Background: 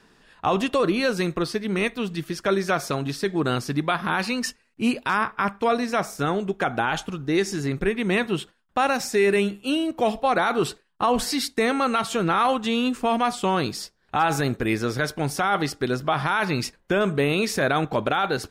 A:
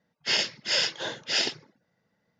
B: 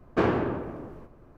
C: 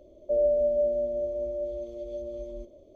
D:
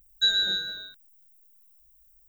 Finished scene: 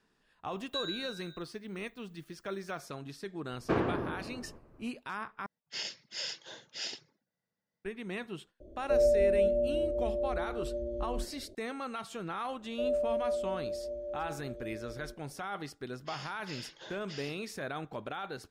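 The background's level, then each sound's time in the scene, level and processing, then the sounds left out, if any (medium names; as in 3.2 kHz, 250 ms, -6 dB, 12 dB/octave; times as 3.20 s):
background -16.5 dB
0.52 s: add D -15.5 dB
3.52 s: add B -6 dB
5.46 s: replace with A -16.5 dB + treble shelf 5.5 kHz +10 dB
8.60 s: add C -2.5 dB + tilt shelf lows +9 dB, about 650 Hz
12.49 s: add C -7.5 dB + tape noise reduction on one side only decoder only
15.81 s: add A -14 dB + peak limiter -23 dBFS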